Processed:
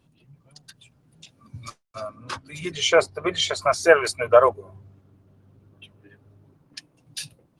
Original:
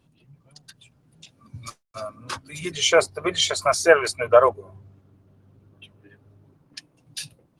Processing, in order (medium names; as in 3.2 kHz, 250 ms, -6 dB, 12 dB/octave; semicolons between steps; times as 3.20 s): 1.65–3.82 s: treble shelf 10 kHz -> 6.1 kHz -10.5 dB